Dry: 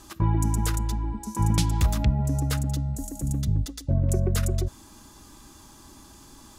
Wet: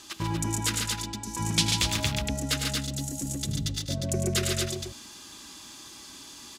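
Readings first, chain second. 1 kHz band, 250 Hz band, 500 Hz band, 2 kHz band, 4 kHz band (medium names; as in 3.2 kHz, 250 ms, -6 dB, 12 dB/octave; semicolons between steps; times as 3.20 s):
-2.0 dB, -2.5 dB, +0.5 dB, +7.5 dB, +10.5 dB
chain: frequency weighting D; multi-tap echo 82/103/141/241 ms -16.5/-7.5/-4/-4.5 dB; trim -3 dB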